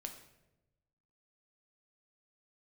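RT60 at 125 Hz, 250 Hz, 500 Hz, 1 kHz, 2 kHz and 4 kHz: 1.4, 1.2, 1.1, 0.80, 0.75, 0.65 seconds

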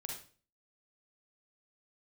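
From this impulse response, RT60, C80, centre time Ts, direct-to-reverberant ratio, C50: 0.40 s, 9.0 dB, 36 ms, −0.5 dB, 2.5 dB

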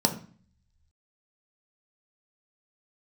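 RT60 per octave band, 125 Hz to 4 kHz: 1.1, 0.70, 0.40, 0.45, 0.45, 0.40 seconds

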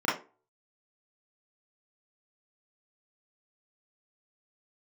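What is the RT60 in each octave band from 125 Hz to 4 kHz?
0.25, 0.35, 0.35, 0.30, 0.25, 0.20 seconds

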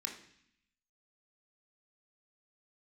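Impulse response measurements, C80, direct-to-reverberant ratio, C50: 11.5 dB, 1.5 dB, 8.0 dB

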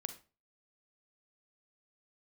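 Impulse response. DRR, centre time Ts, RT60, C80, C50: 9.0 dB, 7 ms, 0.35 s, 17.0 dB, 11.5 dB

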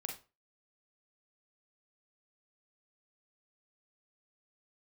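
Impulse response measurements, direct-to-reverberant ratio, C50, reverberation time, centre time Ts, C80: 1.5 dB, 7.0 dB, 0.30 s, 22 ms, 14.5 dB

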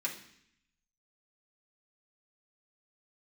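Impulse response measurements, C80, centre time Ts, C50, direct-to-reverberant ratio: 12.5 dB, 19 ms, 9.0 dB, −4.5 dB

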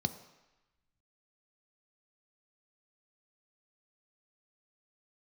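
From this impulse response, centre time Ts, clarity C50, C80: 9 ms, 13.0 dB, 14.5 dB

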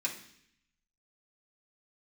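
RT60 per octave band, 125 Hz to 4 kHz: 1.0, 0.90, 0.70, 0.65, 0.85, 0.80 seconds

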